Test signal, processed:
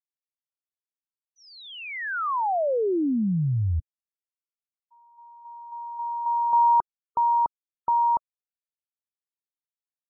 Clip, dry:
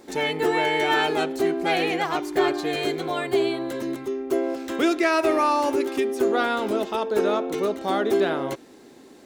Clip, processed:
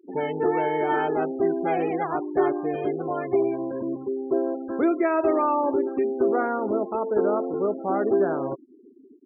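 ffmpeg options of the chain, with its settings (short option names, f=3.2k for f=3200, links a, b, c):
-af "lowpass=1.2k,afftfilt=real='re*gte(hypot(re,im),0.0224)':imag='im*gte(hypot(re,im),0.0224)':win_size=1024:overlap=0.75"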